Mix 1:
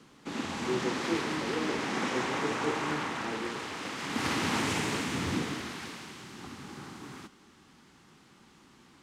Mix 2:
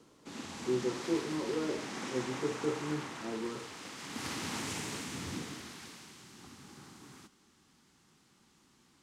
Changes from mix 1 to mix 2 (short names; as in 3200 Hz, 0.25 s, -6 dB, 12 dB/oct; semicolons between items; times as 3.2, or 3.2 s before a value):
background -10.0 dB; master: add tone controls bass +2 dB, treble +8 dB